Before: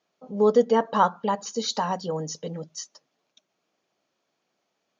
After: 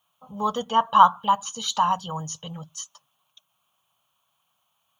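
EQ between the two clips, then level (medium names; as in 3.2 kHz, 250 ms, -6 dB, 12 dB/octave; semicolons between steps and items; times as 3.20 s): FFT filter 120 Hz 0 dB, 240 Hz -18 dB, 400 Hz -25 dB, 1.1 kHz +3 dB, 2 kHz -16 dB, 3.1 kHz +4 dB, 4.9 kHz -17 dB, 9.5 kHz +12 dB; +8.0 dB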